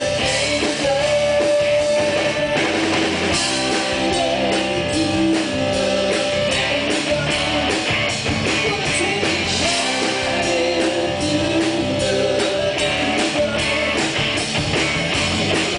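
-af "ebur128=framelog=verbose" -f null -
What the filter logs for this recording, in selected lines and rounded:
Integrated loudness:
  I:         -18.1 LUFS
  Threshold: -28.1 LUFS
Loudness range:
  LRA:         0.9 LU
  Threshold: -38.1 LUFS
  LRA low:   -18.4 LUFS
  LRA high:  -17.5 LUFS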